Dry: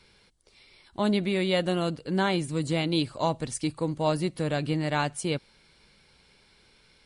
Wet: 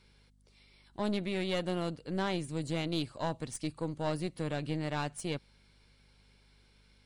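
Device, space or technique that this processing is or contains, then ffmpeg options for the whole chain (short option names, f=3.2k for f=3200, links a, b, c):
valve amplifier with mains hum: -af "aeval=exprs='(tanh(8.91*val(0)+0.55)-tanh(0.55))/8.91':c=same,aeval=exprs='val(0)+0.00112*(sin(2*PI*50*n/s)+sin(2*PI*2*50*n/s)/2+sin(2*PI*3*50*n/s)/3+sin(2*PI*4*50*n/s)/4+sin(2*PI*5*50*n/s)/5)':c=same,volume=-5dB"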